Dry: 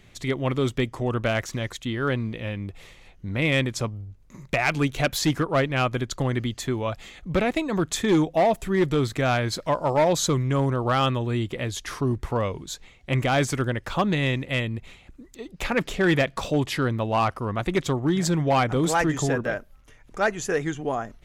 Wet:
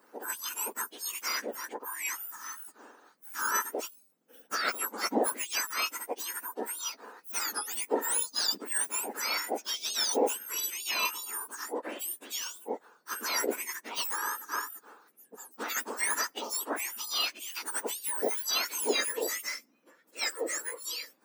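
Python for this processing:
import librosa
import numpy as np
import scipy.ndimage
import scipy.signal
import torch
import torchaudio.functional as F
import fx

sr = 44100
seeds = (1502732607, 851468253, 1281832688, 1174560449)

y = fx.octave_mirror(x, sr, pivot_hz=1800.0)
y = F.gain(torch.from_numpy(y), -3.5).numpy()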